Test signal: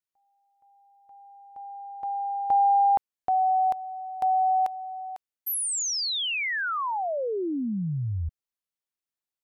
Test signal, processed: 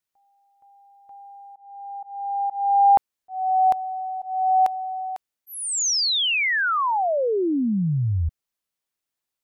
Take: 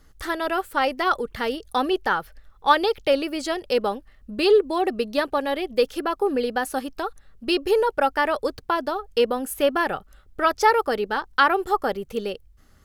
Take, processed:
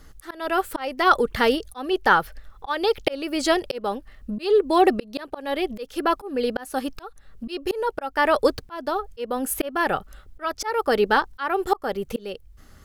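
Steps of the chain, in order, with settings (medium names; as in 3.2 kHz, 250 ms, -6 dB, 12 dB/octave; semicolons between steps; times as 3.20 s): slow attack 410 ms; trim +6.5 dB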